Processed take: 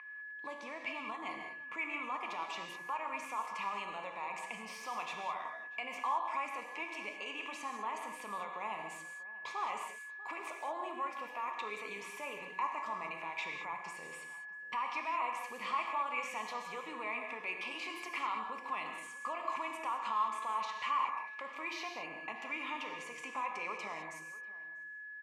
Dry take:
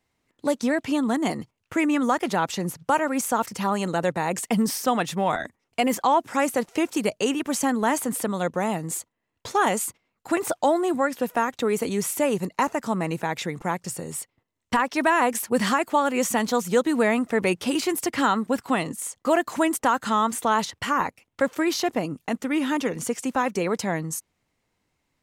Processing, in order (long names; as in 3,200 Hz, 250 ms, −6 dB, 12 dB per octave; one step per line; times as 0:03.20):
steady tone 1,700 Hz −33 dBFS
downward compressor, threshold −25 dBFS, peak gain reduction 9.5 dB
brickwall limiter −24 dBFS, peak gain reduction 10.5 dB
pair of resonant band-passes 1,600 Hz, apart 1.1 octaves
slap from a distant wall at 110 metres, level −18 dB
reverb whose tail is shaped and stops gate 230 ms flat, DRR 2 dB
level +5 dB